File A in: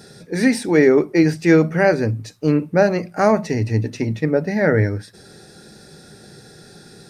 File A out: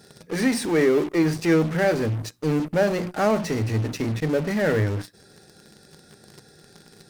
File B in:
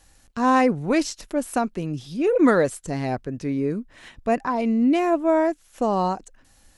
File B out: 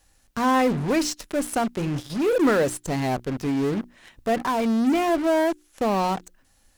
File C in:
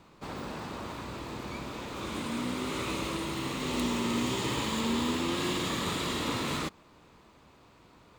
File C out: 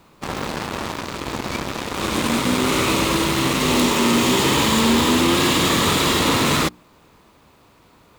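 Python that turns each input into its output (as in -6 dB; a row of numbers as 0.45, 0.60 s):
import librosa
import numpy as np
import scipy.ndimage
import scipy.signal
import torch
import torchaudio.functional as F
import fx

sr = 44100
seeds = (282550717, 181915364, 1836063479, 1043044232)

p1 = fx.hum_notches(x, sr, base_hz=60, count=6)
p2 = fx.fuzz(p1, sr, gain_db=38.0, gate_db=-36.0)
p3 = p1 + F.gain(torch.from_numpy(p2), -8.5).numpy()
p4 = fx.quant_dither(p3, sr, seeds[0], bits=12, dither='triangular')
y = p4 * 10.0 ** (-9 / 20.0) / np.max(np.abs(p4))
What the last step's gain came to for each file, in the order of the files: -8.0, -5.5, +5.0 dB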